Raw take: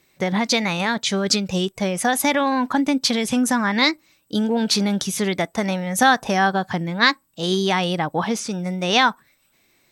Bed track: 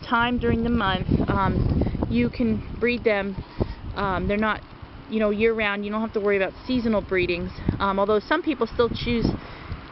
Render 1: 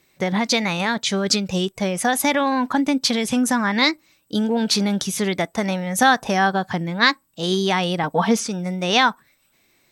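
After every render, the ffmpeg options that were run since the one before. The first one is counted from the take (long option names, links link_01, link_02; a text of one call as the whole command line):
ffmpeg -i in.wav -filter_complex "[0:a]asettb=1/sr,asplit=3[link_01][link_02][link_03];[link_01]atrim=end=8.034[link_04];[link_02]atrim=start=8.03:end=8.47,asetpts=PTS-STARTPTS,afade=type=in:duration=0.004:curve=qsin,afade=type=out:start_time=0.436:duration=0.004:curve=qsin,aecho=1:1:4.4:0.95,atrim=end_sample=19404[link_05];[link_03]atrim=start=8.466[link_06];[link_04][link_05]acrossfade=duration=0.004:curve1=hsin:curve2=qsin[link_07];[link_07][link_06]acrossfade=duration=0.004:curve1=qsin:curve2=hsin" out.wav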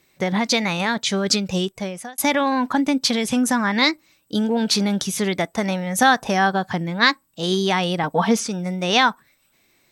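ffmpeg -i in.wav -filter_complex "[0:a]asplit=2[link_01][link_02];[link_01]atrim=end=2.18,asetpts=PTS-STARTPTS,afade=type=out:start_time=1.59:duration=0.59[link_03];[link_02]atrim=start=2.18,asetpts=PTS-STARTPTS,afade=type=in:duration=0.004:curve=hsin[link_04];[link_03][link_04]concat=n=2:v=0:a=1" out.wav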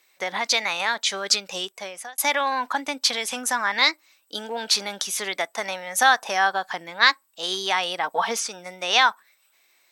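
ffmpeg -i in.wav -af "highpass=720" out.wav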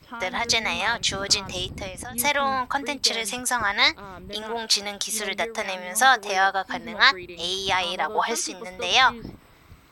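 ffmpeg -i in.wav -i bed.wav -filter_complex "[1:a]volume=-15.5dB[link_01];[0:a][link_01]amix=inputs=2:normalize=0" out.wav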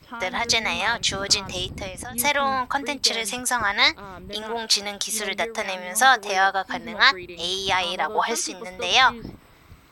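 ffmpeg -i in.wav -af "volume=1dB,alimiter=limit=-2dB:level=0:latency=1" out.wav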